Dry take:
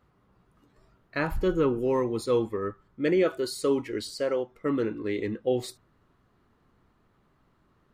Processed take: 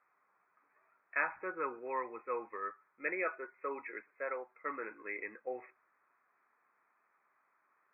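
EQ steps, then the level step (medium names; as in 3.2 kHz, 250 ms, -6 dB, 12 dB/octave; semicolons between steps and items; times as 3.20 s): high-pass 1.2 kHz 12 dB/octave; brick-wall FIR low-pass 2.6 kHz; distance through air 180 m; +2.0 dB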